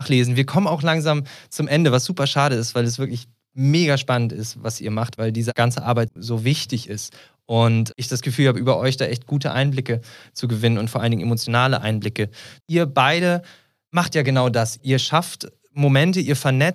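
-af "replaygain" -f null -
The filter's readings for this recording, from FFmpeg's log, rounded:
track_gain = +0.6 dB
track_peak = 0.528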